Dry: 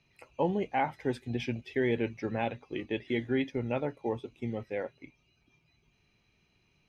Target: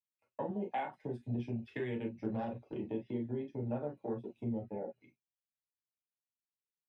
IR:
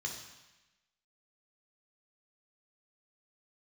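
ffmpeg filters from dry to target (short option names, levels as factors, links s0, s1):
-filter_complex "[0:a]afwtdn=0.0178,asettb=1/sr,asplit=3[s0][s1][s2];[s0]atrim=end=4.614[s3];[s1]atrim=start=4.61:end=5.01,asetpts=PTS-STARTPTS,afade=t=in:d=0.004:c=qsin,afade=t=out:st=0.396:d=0.004:c=qsin,lowpass=1800[s4];[s2]atrim=start=5.006[s5];[s3][s4]acrossfade=d=0.004:c1=hsin:c2=qsin[s6];[s6][s5]acrossfade=d=0.004:c1=qsin:c2=hsin,agate=range=0.0224:threshold=0.00112:ratio=3:detection=peak,asettb=1/sr,asplit=3[s7][s8][s9];[s7]atrim=end=0.494[s10];[s8]atrim=start=0.49:end=1.04,asetpts=PTS-STARTPTS,afade=t=in:d=0.004:c=qsin,afade=t=out:st=0.546:d=0.004:c=qsin,highpass=230[s11];[s9]atrim=start=1.036[s12];[s10][s11]acrossfade=d=0.004:c1=hsin:c2=qsin[s13];[s13][s12]acrossfade=d=0.004:c1=qsin:c2=hsin,acompressor=threshold=0.0112:ratio=6,asettb=1/sr,asplit=3[s14][s15][s16];[s14]atrim=end=2.074[s17];[s15]atrim=start=2.07:end=2.74,asetpts=PTS-STARTPTS,afade=t=in:d=0.004:c=qsin,afade=t=out:st=0.666:d=0.004:c=qsin,aeval=exprs='0.0355*(cos(1*acos(clip(val(0)/0.0355,-1,1)))-cos(1*PI/2))+0.00141*(cos(8*acos(clip(val(0)/0.0355,-1,1)))-cos(8*PI/2))':c=same[s18];[s16]atrim=start=2.736[s19];[s17][s18]acrossfade=d=0.004:c1=hsin:c2=qsin[s20];[s20][s19]acrossfade=d=0.004:c1=qsin:c2=hsin[s21];[1:a]atrim=start_sample=2205,afade=t=out:st=0.13:d=0.01,atrim=end_sample=6174,asetrate=66150,aresample=44100[s22];[s21][s22]afir=irnorm=-1:irlink=0,volume=2.37"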